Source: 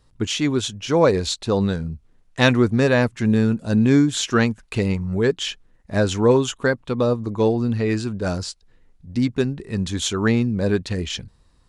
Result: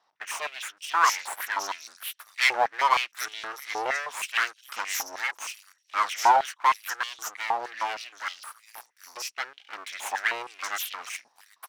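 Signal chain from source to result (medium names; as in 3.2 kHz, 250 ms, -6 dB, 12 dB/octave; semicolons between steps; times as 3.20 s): 8.31–9.31 s: compression, threshold -23 dBFS, peak gain reduction 7.5 dB; peaking EQ 5.7 kHz +14 dB 0.22 oct; bands offset in time lows, highs 770 ms, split 4.8 kHz; full-wave rectifier; step-sequenced high-pass 6.4 Hz 830–3100 Hz; trim -4.5 dB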